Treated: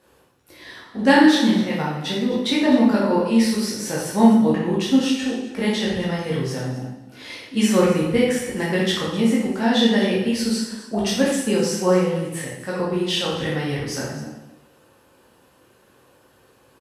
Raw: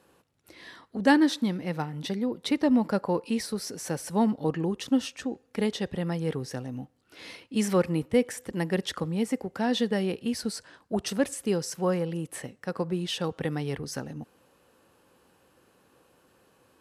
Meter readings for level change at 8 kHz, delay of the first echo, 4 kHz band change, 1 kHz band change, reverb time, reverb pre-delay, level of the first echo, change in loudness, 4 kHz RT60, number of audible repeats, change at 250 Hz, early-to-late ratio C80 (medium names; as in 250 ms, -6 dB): +8.0 dB, 255 ms, +10.5 dB, +8.0 dB, 0.95 s, 6 ms, -14.5 dB, +8.5 dB, 0.90 s, 1, +9.0 dB, 4.0 dB